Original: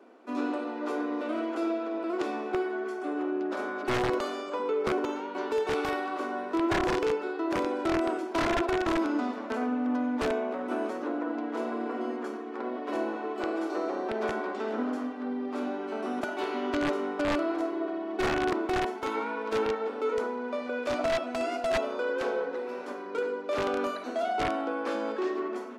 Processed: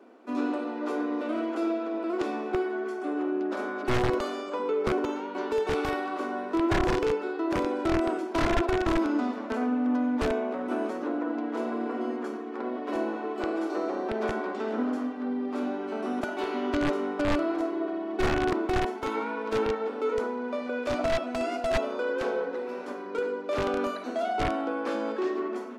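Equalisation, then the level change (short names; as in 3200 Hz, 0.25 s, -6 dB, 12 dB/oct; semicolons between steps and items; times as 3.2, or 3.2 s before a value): low shelf 150 Hz +10.5 dB; 0.0 dB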